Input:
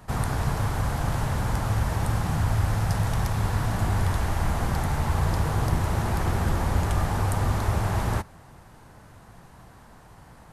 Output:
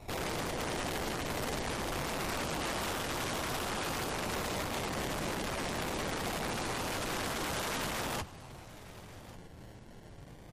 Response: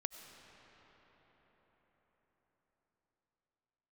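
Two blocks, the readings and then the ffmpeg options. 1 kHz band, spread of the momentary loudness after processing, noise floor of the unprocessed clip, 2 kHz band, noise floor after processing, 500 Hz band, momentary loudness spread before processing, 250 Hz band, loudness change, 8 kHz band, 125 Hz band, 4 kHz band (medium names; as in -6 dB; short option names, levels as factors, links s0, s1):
-6.5 dB, 16 LU, -50 dBFS, -2.5 dB, -51 dBFS, -3.0 dB, 2 LU, -7.5 dB, -9.0 dB, -1.0 dB, -19.0 dB, +2.0 dB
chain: -filter_complex "[0:a]acrusher=samples=28:mix=1:aa=0.000001:lfo=1:lforange=16.8:lforate=0.23,acontrast=43,flanger=delay=2.6:depth=9.5:regen=-61:speed=0.27:shape=triangular,aeval=exprs='(mod(23.7*val(0)+1,2)-1)/23.7':c=same,asplit=2[s0][s1];[s1]aecho=0:1:1142:0.112[s2];[s0][s2]amix=inputs=2:normalize=0,volume=0.708" -ar 44100 -c:a libmp3lame -b:a 56k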